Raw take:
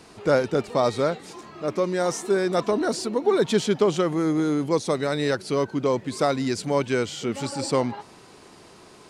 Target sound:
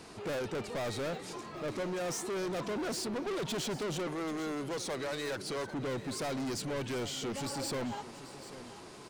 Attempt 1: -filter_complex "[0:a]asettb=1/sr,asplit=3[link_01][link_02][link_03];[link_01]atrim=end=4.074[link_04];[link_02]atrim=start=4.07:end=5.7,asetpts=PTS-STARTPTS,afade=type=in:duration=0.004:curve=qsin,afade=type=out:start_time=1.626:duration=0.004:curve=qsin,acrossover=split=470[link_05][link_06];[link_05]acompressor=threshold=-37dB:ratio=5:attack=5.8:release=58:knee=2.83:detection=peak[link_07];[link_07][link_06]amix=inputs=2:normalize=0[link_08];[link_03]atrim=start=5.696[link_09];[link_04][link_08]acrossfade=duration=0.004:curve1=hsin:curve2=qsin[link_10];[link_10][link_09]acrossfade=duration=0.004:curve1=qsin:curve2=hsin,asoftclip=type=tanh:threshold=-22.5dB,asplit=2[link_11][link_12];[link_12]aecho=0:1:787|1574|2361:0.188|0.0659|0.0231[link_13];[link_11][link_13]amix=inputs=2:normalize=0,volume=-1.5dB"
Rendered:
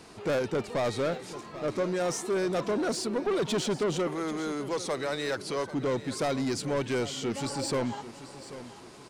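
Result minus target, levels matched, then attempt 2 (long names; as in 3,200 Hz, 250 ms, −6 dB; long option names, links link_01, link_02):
soft clipping: distortion −6 dB
-filter_complex "[0:a]asettb=1/sr,asplit=3[link_01][link_02][link_03];[link_01]atrim=end=4.074[link_04];[link_02]atrim=start=4.07:end=5.7,asetpts=PTS-STARTPTS,afade=type=in:duration=0.004:curve=qsin,afade=type=out:start_time=1.626:duration=0.004:curve=qsin,acrossover=split=470[link_05][link_06];[link_05]acompressor=threshold=-37dB:ratio=5:attack=5.8:release=58:knee=2.83:detection=peak[link_07];[link_07][link_06]amix=inputs=2:normalize=0[link_08];[link_03]atrim=start=5.696[link_09];[link_04][link_08]acrossfade=duration=0.004:curve1=hsin:curve2=qsin[link_10];[link_10][link_09]acrossfade=duration=0.004:curve1=qsin:curve2=hsin,asoftclip=type=tanh:threshold=-32dB,asplit=2[link_11][link_12];[link_12]aecho=0:1:787|1574|2361:0.188|0.0659|0.0231[link_13];[link_11][link_13]amix=inputs=2:normalize=0,volume=-1.5dB"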